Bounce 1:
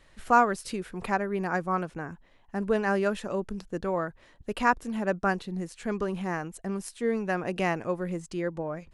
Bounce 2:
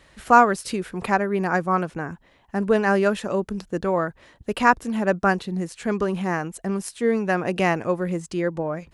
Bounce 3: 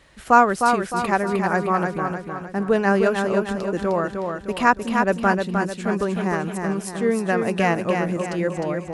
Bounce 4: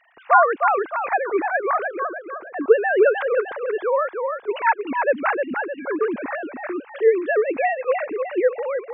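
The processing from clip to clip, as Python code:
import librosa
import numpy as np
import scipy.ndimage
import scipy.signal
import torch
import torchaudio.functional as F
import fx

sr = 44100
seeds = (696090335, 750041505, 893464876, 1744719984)

y1 = scipy.signal.sosfilt(scipy.signal.butter(2, 43.0, 'highpass', fs=sr, output='sos'), x)
y1 = y1 * 10.0 ** (6.5 / 20.0)
y2 = fx.echo_feedback(y1, sr, ms=307, feedback_pct=46, wet_db=-5)
y3 = fx.sine_speech(y2, sr)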